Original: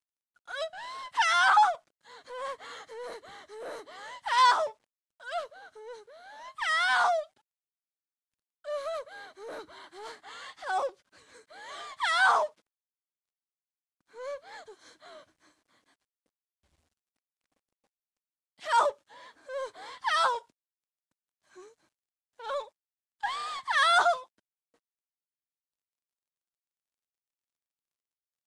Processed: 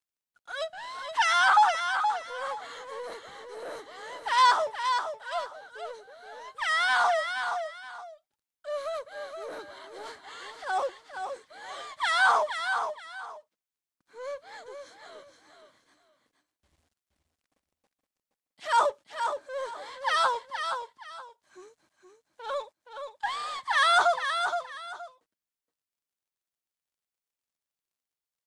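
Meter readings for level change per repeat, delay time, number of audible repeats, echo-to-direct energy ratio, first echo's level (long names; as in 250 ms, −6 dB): −11.5 dB, 471 ms, 2, −6.5 dB, −7.0 dB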